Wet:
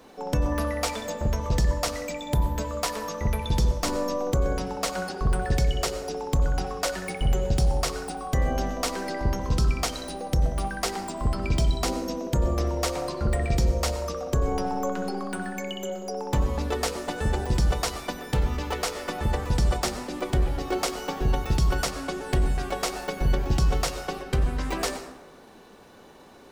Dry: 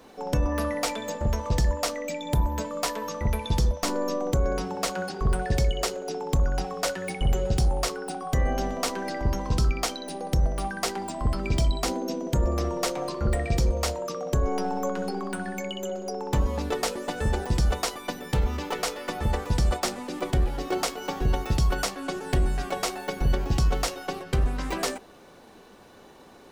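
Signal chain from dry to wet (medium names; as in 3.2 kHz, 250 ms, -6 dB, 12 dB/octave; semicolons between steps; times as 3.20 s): plate-style reverb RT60 1.1 s, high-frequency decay 0.5×, pre-delay 80 ms, DRR 10 dB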